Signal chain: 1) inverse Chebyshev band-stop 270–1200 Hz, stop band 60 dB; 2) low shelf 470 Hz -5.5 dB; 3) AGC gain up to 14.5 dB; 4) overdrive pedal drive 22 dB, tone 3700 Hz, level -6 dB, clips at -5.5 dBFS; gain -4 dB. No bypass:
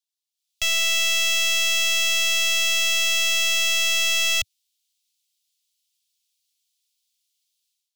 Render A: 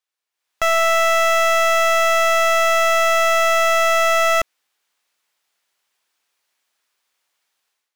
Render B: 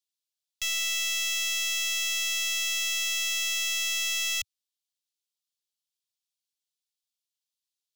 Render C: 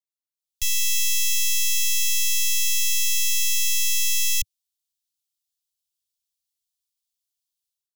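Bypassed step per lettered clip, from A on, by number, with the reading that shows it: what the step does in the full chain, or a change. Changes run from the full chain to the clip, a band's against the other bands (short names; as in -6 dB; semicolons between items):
1, 1 kHz band +23.0 dB; 3, 500 Hz band -7.0 dB; 4, crest factor change +2.0 dB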